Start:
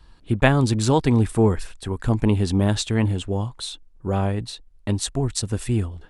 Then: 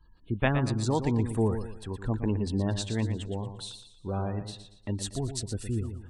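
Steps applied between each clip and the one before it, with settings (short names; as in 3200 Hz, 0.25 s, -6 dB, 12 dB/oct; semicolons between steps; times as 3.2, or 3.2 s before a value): spectral gate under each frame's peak -30 dB strong; warbling echo 0.117 s, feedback 36%, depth 55 cents, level -9 dB; gain -9 dB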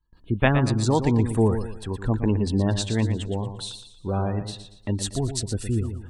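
gate with hold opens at -48 dBFS; gain +6 dB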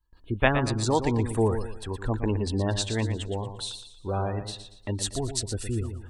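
bell 170 Hz -8.5 dB 1.4 oct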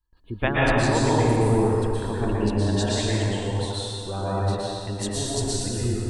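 plate-style reverb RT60 2.4 s, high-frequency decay 0.7×, pre-delay 0.105 s, DRR -7 dB; gain -3.5 dB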